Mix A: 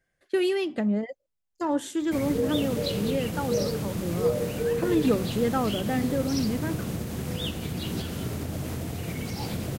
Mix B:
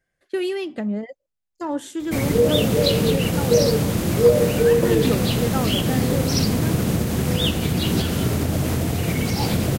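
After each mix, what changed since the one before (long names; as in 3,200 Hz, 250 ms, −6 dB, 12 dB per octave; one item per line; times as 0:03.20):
background +10.5 dB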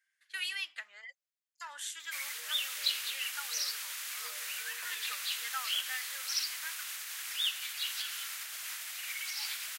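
background −7.0 dB
master: add high-pass filter 1,500 Hz 24 dB per octave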